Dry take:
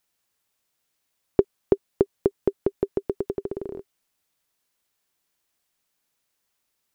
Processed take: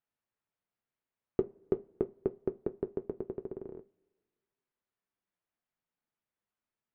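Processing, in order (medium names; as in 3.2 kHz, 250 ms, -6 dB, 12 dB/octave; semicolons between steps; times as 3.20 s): low-pass 2 kHz 12 dB/octave; peaking EQ 180 Hz +4 dB 0.97 oct; two-slope reverb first 0.31 s, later 1.8 s, from -21 dB, DRR 13.5 dB; in parallel at -12 dB: hard clipper -10.5 dBFS, distortion -11 dB; on the sum: flange 0.86 Hz, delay 7.3 ms, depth 3 ms, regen -55%; trim -8.5 dB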